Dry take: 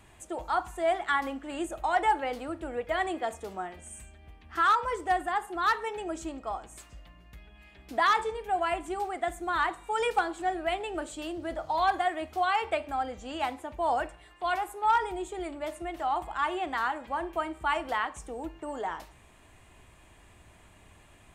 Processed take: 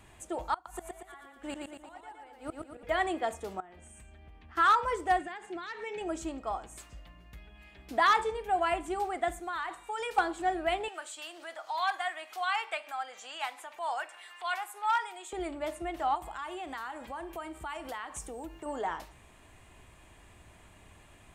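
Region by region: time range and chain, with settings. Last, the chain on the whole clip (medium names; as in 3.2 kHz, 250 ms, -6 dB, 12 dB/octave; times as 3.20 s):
0.54–2.83 s: treble shelf 8.2 kHz +8 dB + inverted gate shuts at -27 dBFS, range -25 dB + feedback delay 116 ms, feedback 49%, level -3 dB
3.60–4.57 s: treble shelf 5.2 kHz -9 dB + compression 10:1, threshold -48 dBFS
5.19–6.01 s: compression 12:1, threshold -33 dBFS + cabinet simulation 110–7700 Hz, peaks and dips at 180 Hz +4 dB, 800 Hz -7 dB, 1.2 kHz -10 dB, 2.3 kHz +7 dB
9.40–10.18 s: bass shelf 410 Hz -10 dB + compression 4:1, threshold -32 dBFS
10.88–15.33 s: high-pass 1.1 kHz + upward compressor, threshold -40 dBFS
16.15–18.66 s: compression 3:1, threshold -39 dBFS + treble shelf 6.4 kHz +11 dB
whole clip: none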